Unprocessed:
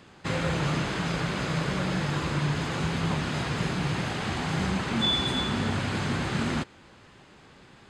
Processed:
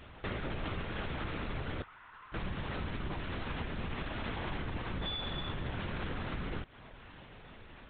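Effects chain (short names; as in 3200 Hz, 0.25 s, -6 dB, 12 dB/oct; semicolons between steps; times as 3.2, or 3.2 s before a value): compressor 6:1, threshold -36 dBFS, peak gain reduction 14 dB; 1.82–2.34 ladder band-pass 1400 Hz, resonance 40%; LPC vocoder at 8 kHz whisper; gain +1 dB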